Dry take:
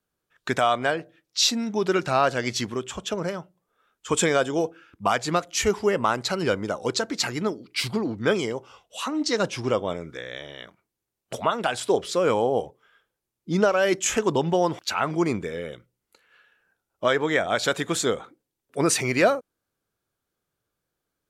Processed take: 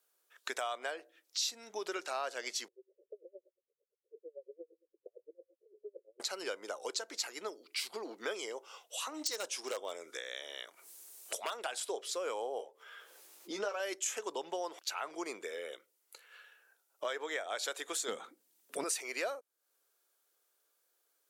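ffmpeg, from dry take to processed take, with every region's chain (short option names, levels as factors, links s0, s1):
-filter_complex "[0:a]asettb=1/sr,asplit=3[s0][s1][s2];[s0]atrim=end=2.684[s3];[s1]atrim=start=2.68:end=6.2,asetpts=PTS-STARTPTS,afade=t=in:d=0.004:c=qsin,afade=t=out:st=3.516:d=0.004:c=qsin,acompressor=threshold=0.0141:ratio=5:attack=3.2:release=140:knee=1:detection=peak,asuperpass=centerf=440:order=12:qfactor=1.8,aeval=exprs='val(0)*pow(10,-33*(0.5-0.5*cos(2*PI*8.8*n/s))/20)':c=same[s4];[s2]atrim=start=6.196[s5];[s3][s4]acrossfade=d=0.004:c1=hsin:c2=qsin[s6];[s6][s5]acrossfade=d=0.004:c1=qsin:c2=hsin,asettb=1/sr,asplit=3[s7][s8][s9];[s7]atrim=end=9.144[s10];[s8]atrim=start=9.14:end=11.54,asetpts=PTS-STARTPTS,afade=t=in:d=0.004:c=qsin,afade=t=out:st=2.396:d=0.004:c=qsin,equalizer=f=8900:w=0.65:g=8,acompressor=mode=upward:threshold=0.00631:ratio=2.5:attack=3.2:release=140:knee=2.83:detection=peak,aeval=exprs='0.168*(abs(mod(val(0)/0.168+3,4)-2)-1)':c=same[s11];[s9]atrim=start=11.536[s12];[s10][s11]acrossfade=d=0.004:c1=hsin:c2=qsin[s13];[s13][s12]acrossfade=d=0.004:c1=qsin:c2=hsin,asettb=1/sr,asplit=3[s14][s15][s16];[s14]atrim=end=12.584[s17];[s15]atrim=start=12.58:end=13.8,asetpts=PTS-STARTPTS,afade=t=in:d=0.004:c=qsin,afade=t=out:st=1.216:d=0.004:c=qsin,highshelf=f=7700:g=-7.5,acompressor=mode=upward:threshold=0.00794:ratio=2.5:attack=3.2:release=140:knee=2.83:detection=peak,asplit=2[s18][s19];[s19]adelay=15,volume=0.562[s20];[s18][s20]amix=inputs=2:normalize=0,atrim=end_sample=53802[s21];[s16]atrim=start=13.796[s22];[s17][s21]acrossfade=d=0.004:c1=hsin:c2=qsin[s23];[s23][s22]acrossfade=d=0.004:c1=qsin:c2=hsin,asettb=1/sr,asplit=3[s24][s25][s26];[s24]atrim=end=18.084[s27];[s25]atrim=start=18.08:end=18.84,asetpts=PTS-STARTPTS,afade=t=in:d=0.004:c=qsin,afade=t=out:st=0.756:d=0.004:c=qsin,lowshelf=f=290:t=q:w=1.5:g=13,acontrast=57[s28];[s26]atrim=start=18.836[s29];[s27][s28]acrossfade=d=0.004:c1=hsin:c2=qsin[s30];[s30][s29]acrossfade=d=0.004:c1=qsin:c2=hsin,highpass=f=400:w=0.5412,highpass=f=400:w=1.3066,highshelf=f=4800:g=11,acompressor=threshold=0.00708:ratio=2.5"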